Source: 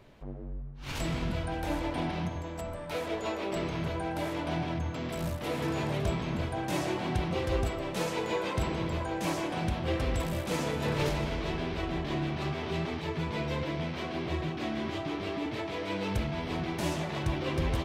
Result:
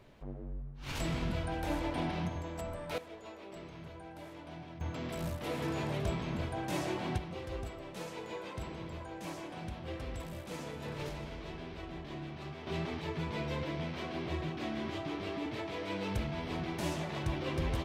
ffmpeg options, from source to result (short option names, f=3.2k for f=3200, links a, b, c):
-af "asetnsamples=n=441:p=0,asendcmd='2.98 volume volume -15dB;4.81 volume volume -4dB;7.18 volume volume -11dB;12.67 volume volume -4dB',volume=-2.5dB"